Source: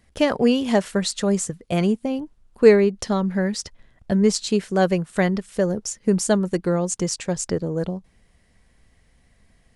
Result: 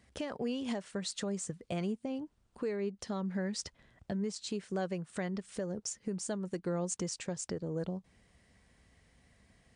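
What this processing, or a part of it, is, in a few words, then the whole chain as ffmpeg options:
podcast mastering chain: -af "highpass=61,deesser=0.35,acompressor=threshold=-32dB:ratio=2,alimiter=limit=-23dB:level=0:latency=1:release=373,volume=-3dB" -ar 22050 -c:a libmp3lame -b:a 96k

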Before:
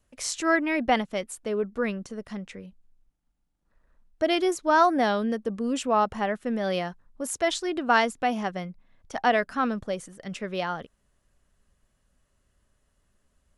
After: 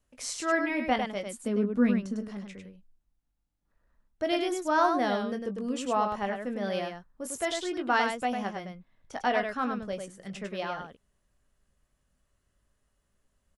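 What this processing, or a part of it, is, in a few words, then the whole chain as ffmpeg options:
slapback doubling: -filter_complex "[0:a]asplit=3[a][b][c];[b]adelay=20,volume=-8.5dB[d];[c]adelay=101,volume=-5.5dB[e];[a][d][e]amix=inputs=3:normalize=0,asettb=1/sr,asplit=3[f][g][h];[f]atrim=end=1.264[i];[g]atrim=start=1.26:end=2.28,asetpts=PTS-STARTPTS,afade=t=in:d=0.004:c=qsin,afade=t=out:st=1.016:d=0.004:c=qsin,equalizer=f=240:w=2.8:g=15[j];[h]atrim=start=2.276[k];[i][j]acrossfade=d=0.004:c1=hsin:c2=qsin[l];[l][k]acrossfade=d=0.004:c1=qsin:c2=hsin,volume=-5.5dB"

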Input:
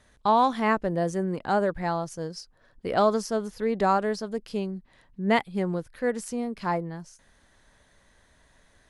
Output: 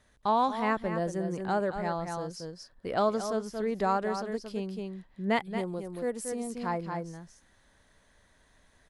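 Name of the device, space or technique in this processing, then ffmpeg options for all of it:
ducked delay: -filter_complex "[0:a]asplit=3[a][b][c];[b]adelay=228,volume=-2.5dB[d];[c]apad=whole_len=402390[e];[d][e]sidechaincompress=threshold=-27dB:ratio=8:attack=6.9:release=464[f];[a][f]amix=inputs=2:normalize=0,asettb=1/sr,asplit=3[g][h][i];[g]atrim=end=5.584[j];[h]atrim=start=5.58:end=6.5,asetpts=PTS-STARTPTS,afade=t=in:d=0.004:c=qsin,afade=t=out:st=0.916:d=0.004:c=qsin,equalizer=f=160:t=o:w=0.67:g=-5,equalizer=f=1.6k:t=o:w=0.67:g=-8,equalizer=f=10k:t=o:w=0.67:g=7[k];[i]atrim=start=6.496[l];[j][k]acrossfade=d=0.004:c1=hsin:c2=qsin[m];[m][l]acrossfade=d=0.004:c1=qsin:c2=hsin,volume=-5dB"

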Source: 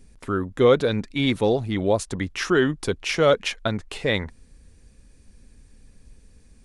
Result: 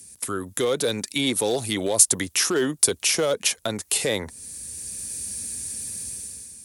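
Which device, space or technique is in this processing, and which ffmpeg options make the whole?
FM broadcast chain: -filter_complex "[0:a]highpass=f=74:w=0.5412,highpass=f=74:w=1.3066,dynaudnorm=f=130:g=9:m=13dB,acrossover=split=290|990[a][b][c];[a]acompressor=threshold=-31dB:ratio=4[d];[b]acompressor=threshold=-13dB:ratio=4[e];[c]acompressor=threshold=-32dB:ratio=4[f];[d][e][f]amix=inputs=3:normalize=0,aemphasis=mode=production:type=75fm,alimiter=limit=-12dB:level=0:latency=1:release=45,asoftclip=type=hard:threshold=-13.5dB,lowpass=f=15k:w=0.5412,lowpass=f=15k:w=1.3066,aemphasis=mode=production:type=75fm,volume=-2dB"

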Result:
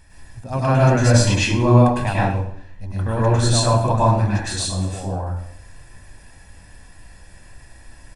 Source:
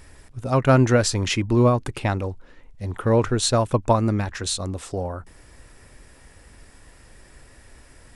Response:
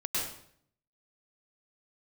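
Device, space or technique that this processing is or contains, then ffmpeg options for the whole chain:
microphone above a desk: -filter_complex "[0:a]aecho=1:1:1.2:0.5[a];[1:a]atrim=start_sample=2205[b];[a][b]afir=irnorm=-1:irlink=0,asettb=1/sr,asplit=3[c][d][e];[c]atrim=end=1.144[f];[d]atrim=start=1.14:end=2.31,asetpts=PTS-STARTPTS,afade=t=in:d=0.004:c=qsin,afade=t=out:st=1.166:d=0.004:c=qsin,equalizer=f=910:w=0.39:g=3.5[g];[e]atrim=start=2.306[h];[f][g]acrossfade=d=0.004:c1=hsin:c2=qsin[i];[i][h]acrossfade=d=0.004:c1=qsin:c2=hsin,volume=-4.5dB"

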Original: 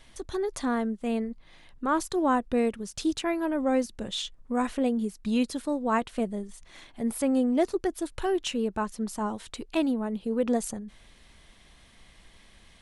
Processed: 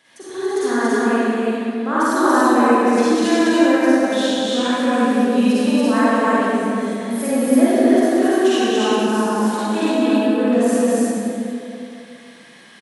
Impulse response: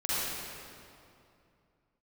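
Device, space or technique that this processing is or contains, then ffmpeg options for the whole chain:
stadium PA: -filter_complex "[0:a]highpass=f=170:w=0.5412,highpass=f=170:w=1.3066,equalizer=f=1.7k:t=o:w=0.24:g=7.5,aecho=1:1:192.4|282.8:0.355|0.891[a];[1:a]atrim=start_sample=2205[b];[a][b]afir=irnorm=-1:irlink=0"

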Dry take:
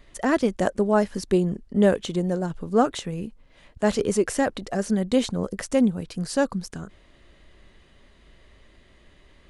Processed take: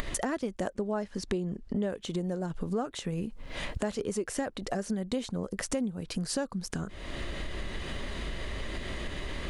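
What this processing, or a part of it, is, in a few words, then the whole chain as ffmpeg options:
upward and downward compression: -filter_complex "[0:a]asettb=1/sr,asplit=3[a][b][c];[a]atrim=end=0.734[d];[b]atrim=start=0.73:end=1.9,asetpts=PTS-STARTPTS,afade=t=in:d=0.004:c=qsin,afade=t=out:st=1.166:d=0.004:c=qsin,lowpass=7.6k[e];[c]atrim=start=1.896[f];[d][e]acrossfade=d=0.004:c1=hsin:c2=qsin[g];[g][f]acrossfade=d=0.004:c1=qsin:c2=hsin,acompressor=mode=upward:threshold=-24dB:ratio=2.5,acompressor=threshold=-35dB:ratio=5,volume=4.5dB"

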